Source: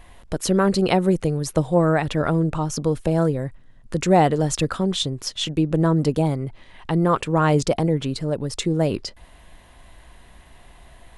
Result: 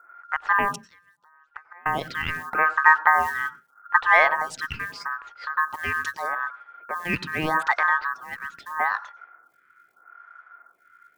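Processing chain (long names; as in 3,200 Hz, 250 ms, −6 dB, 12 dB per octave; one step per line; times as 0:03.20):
low-pass that shuts in the quiet parts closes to 420 Hz, open at −13.5 dBFS
0:00.73–0:01.86: gate with flip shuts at −18 dBFS, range −30 dB
0:02.52–0:03.98: graphic EQ with 10 bands 125 Hz +7 dB, 250 Hz +4 dB, 500 Hz +7 dB
ring modulation 1,400 Hz
floating-point word with a short mantissa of 4 bits
on a send at −18 dB: convolution reverb RT60 0.20 s, pre-delay 90 ms
on the sum: phaser with staggered stages 0.8 Hz
level +2 dB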